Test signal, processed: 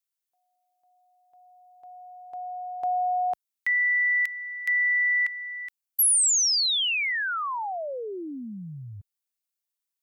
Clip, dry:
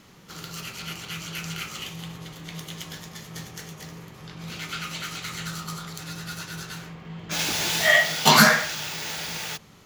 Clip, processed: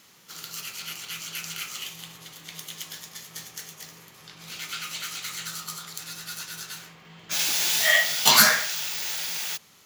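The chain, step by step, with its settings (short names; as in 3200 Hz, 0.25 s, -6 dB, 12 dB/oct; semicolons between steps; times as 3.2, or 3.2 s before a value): tilt +3 dB/oct; gain -5 dB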